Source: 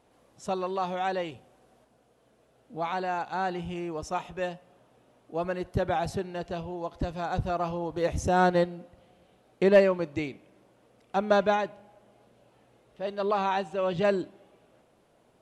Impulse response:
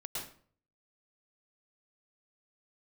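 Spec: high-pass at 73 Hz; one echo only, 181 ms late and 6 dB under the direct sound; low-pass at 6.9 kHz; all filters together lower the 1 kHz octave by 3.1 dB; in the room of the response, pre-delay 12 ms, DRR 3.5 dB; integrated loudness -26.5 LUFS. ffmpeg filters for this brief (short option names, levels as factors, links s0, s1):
-filter_complex "[0:a]highpass=73,lowpass=6900,equalizer=f=1000:t=o:g=-4.5,aecho=1:1:181:0.501,asplit=2[s0][s1];[1:a]atrim=start_sample=2205,adelay=12[s2];[s1][s2]afir=irnorm=-1:irlink=0,volume=0.631[s3];[s0][s3]amix=inputs=2:normalize=0,volume=1.19"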